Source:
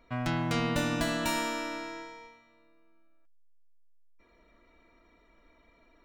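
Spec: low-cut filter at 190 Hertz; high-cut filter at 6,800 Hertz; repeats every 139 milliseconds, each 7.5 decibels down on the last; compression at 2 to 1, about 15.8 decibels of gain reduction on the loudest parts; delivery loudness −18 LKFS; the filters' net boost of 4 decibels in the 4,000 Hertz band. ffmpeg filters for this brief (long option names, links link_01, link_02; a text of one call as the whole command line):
ffmpeg -i in.wav -af "highpass=190,lowpass=6800,equalizer=frequency=4000:width_type=o:gain=5.5,acompressor=threshold=-56dB:ratio=2,aecho=1:1:139|278|417|556|695:0.422|0.177|0.0744|0.0312|0.0131,volume=27dB" out.wav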